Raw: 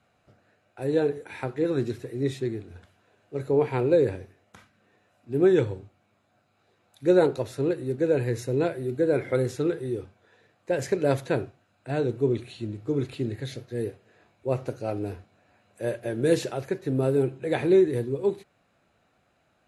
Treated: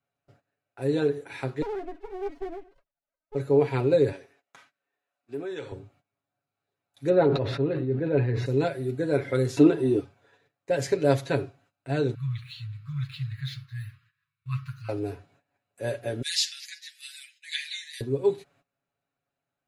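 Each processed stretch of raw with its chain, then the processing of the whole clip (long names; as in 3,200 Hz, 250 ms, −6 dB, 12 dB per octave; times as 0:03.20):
0:01.62–0:03.35: three sine waves on the formant tracks + downward compressor 5 to 1, threshold −27 dBFS + windowed peak hold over 33 samples
0:04.12–0:05.72: meter weighting curve A + downward compressor 5 to 1, threshold −30 dBFS
0:07.09–0:08.46: high-frequency loss of the air 370 metres + level that may fall only so fast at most 52 dB per second
0:09.57–0:10.00: upward compression, threshold −31 dBFS + hollow resonant body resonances 310/660/940/2,700 Hz, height 14 dB, ringing for 25 ms
0:12.14–0:14.89: running median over 3 samples + linear-phase brick-wall band-stop 170–1,000 Hz + flat-topped bell 7,500 Hz −9 dB 1 octave
0:16.22–0:18.01: Butterworth high-pass 1,900 Hz 48 dB per octave + parametric band 5,000 Hz +10 dB 1 octave + comb filter 6.6 ms, depth 75%
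whole clip: noise gate −59 dBFS, range −18 dB; dynamic equaliser 4,500 Hz, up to +5 dB, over −51 dBFS, Q 1.1; comb filter 7.2 ms, depth 67%; level −2 dB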